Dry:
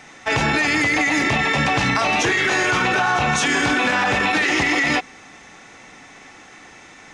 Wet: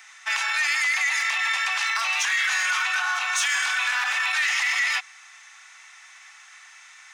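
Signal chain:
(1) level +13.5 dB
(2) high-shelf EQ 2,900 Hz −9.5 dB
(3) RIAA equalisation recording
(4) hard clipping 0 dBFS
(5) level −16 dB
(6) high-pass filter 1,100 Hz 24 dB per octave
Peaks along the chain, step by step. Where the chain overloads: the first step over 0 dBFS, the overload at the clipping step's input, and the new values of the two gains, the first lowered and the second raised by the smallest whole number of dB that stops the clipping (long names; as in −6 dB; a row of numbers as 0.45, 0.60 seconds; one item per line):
+6.5, +4.0, +6.5, 0.0, −16.0, −12.0 dBFS
step 1, 6.5 dB
step 1 +6.5 dB, step 5 −9 dB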